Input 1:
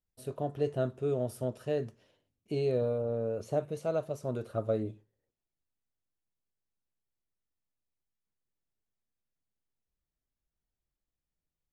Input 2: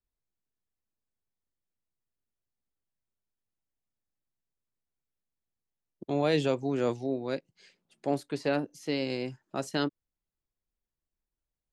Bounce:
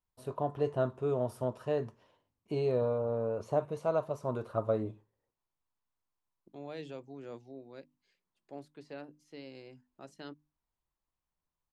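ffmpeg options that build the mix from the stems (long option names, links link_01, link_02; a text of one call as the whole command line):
ffmpeg -i stem1.wav -i stem2.wav -filter_complex "[0:a]equalizer=frequency=1000:width_type=o:width=0.63:gain=13.5,volume=-1.5dB[link_01];[1:a]bandreject=frequency=50:width_type=h:width=6,bandreject=frequency=100:width_type=h:width=6,bandreject=frequency=150:width_type=h:width=6,bandreject=frequency=200:width_type=h:width=6,bandreject=frequency=250:width_type=h:width=6,bandreject=frequency=300:width_type=h:width=6,adelay=450,volume=-16.5dB[link_02];[link_01][link_02]amix=inputs=2:normalize=0,highshelf=frequency=6400:gain=-7" out.wav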